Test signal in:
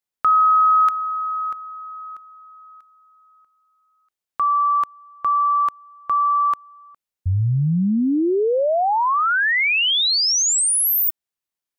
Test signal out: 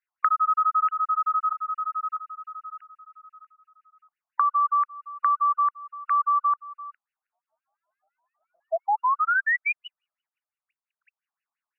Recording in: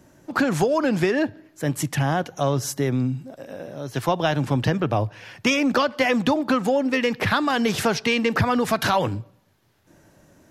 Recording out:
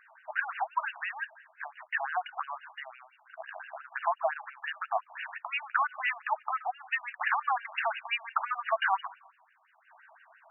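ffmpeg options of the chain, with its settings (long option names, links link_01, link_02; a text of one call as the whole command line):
ffmpeg -i in.wav -af "acompressor=threshold=-29dB:ratio=5:attack=8.4:release=322:knee=6:detection=peak,aexciter=amount=13.9:drive=4.7:freq=3700,afftfilt=real='re*between(b*sr/1024,850*pow(2100/850,0.5+0.5*sin(2*PI*5.8*pts/sr))/1.41,850*pow(2100/850,0.5+0.5*sin(2*PI*5.8*pts/sr))*1.41)':imag='im*between(b*sr/1024,850*pow(2100/850,0.5+0.5*sin(2*PI*5.8*pts/sr))/1.41,850*pow(2100/850,0.5+0.5*sin(2*PI*5.8*pts/sr))*1.41)':win_size=1024:overlap=0.75,volume=8.5dB" out.wav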